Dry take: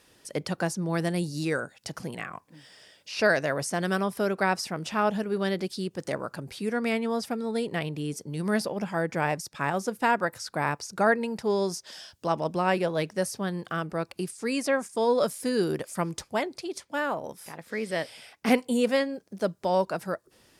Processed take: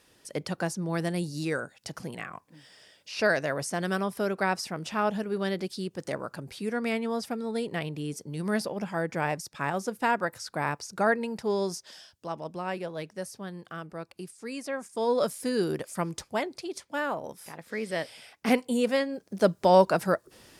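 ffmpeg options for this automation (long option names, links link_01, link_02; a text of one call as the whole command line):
ffmpeg -i in.wav -af "volume=12.5dB,afade=type=out:start_time=11.75:duration=0.41:silence=0.473151,afade=type=in:start_time=14.72:duration=0.45:silence=0.446684,afade=type=in:start_time=19.07:duration=0.44:silence=0.421697" out.wav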